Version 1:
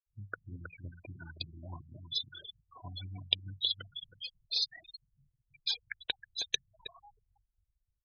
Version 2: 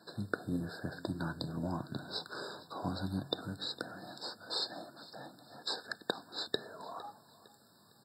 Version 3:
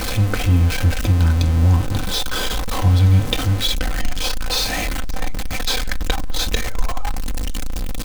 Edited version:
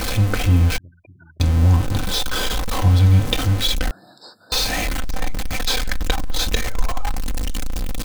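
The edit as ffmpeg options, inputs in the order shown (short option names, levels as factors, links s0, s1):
-filter_complex "[2:a]asplit=3[s0][s1][s2];[s0]atrim=end=0.782[s3];[0:a]atrim=start=0.778:end=1.402[s4];[s1]atrim=start=1.398:end=3.912[s5];[1:a]atrim=start=3.908:end=4.522[s6];[s2]atrim=start=4.518[s7];[s3][s4]acrossfade=d=0.004:c1=hsin:c2=hsin[s8];[s8][s5]acrossfade=d=0.004:c1=hsin:c2=hsin[s9];[s9][s6]acrossfade=d=0.004:c1=hsin:c2=hsin[s10];[s10][s7]acrossfade=d=0.004:c1=hsin:c2=hsin"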